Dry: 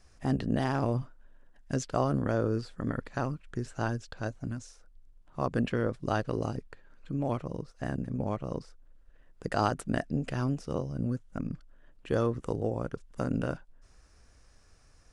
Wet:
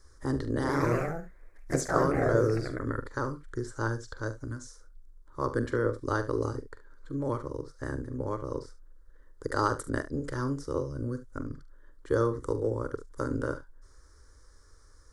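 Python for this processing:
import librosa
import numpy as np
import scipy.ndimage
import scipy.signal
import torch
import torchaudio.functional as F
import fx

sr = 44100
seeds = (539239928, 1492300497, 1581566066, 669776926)

y = fx.fixed_phaser(x, sr, hz=710.0, stages=6)
y = fx.echo_pitch(y, sr, ms=122, semitones=2, count=3, db_per_echo=-3.0, at=(0.51, 2.93))
y = fx.room_early_taps(y, sr, ms=(44, 72), db=(-12.5, -15.5))
y = y * librosa.db_to_amplitude(4.0)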